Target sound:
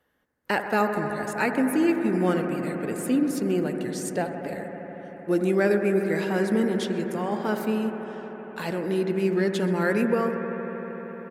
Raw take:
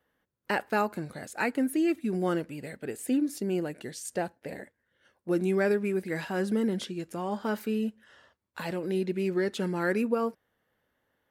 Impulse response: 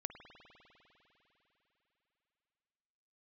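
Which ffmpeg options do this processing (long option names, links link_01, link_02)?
-filter_complex "[0:a]asplit=2[link_01][link_02];[link_02]adelay=128,lowpass=frequency=4900:poles=1,volume=-19dB,asplit=2[link_03][link_04];[link_04]adelay=128,lowpass=frequency=4900:poles=1,volume=0.5,asplit=2[link_05][link_06];[link_06]adelay=128,lowpass=frequency=4900:poles=1,volume=0.5,asplit=2[link_07][link_08];[link_08]adelay=128,lowpass=frequency=4900:poles=1,volume=0.5[link_09];[link_01][link_03][link_05][link_07][link_09]amix=inputs=5:normalize=0[link_10];[1:a]atrim=start_sample=2205,asetrate=28665,aresample=44100[link_11];[link_10][link_11]afir=irnorm=-1:irlink=0,volume=5dB"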